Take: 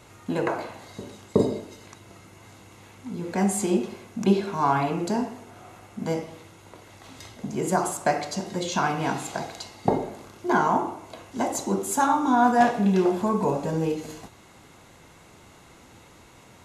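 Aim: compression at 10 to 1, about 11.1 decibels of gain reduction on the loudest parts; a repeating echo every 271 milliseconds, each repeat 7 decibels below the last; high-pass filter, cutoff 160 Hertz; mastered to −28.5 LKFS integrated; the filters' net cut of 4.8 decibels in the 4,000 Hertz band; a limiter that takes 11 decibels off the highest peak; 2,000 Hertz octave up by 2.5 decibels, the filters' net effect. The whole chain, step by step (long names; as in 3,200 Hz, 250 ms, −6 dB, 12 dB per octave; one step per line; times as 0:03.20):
high-pass filter 160 Hz
parametric band 2,000 Hz +5 dB
parametric band 4,000 Hz −8 dB
downward compressor 10 to 1, threshold −25 dBFS
brickwall limiter −22.5 dBFS
repeating echo 271 ms, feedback 45%, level −7 dB
level +4.5 dB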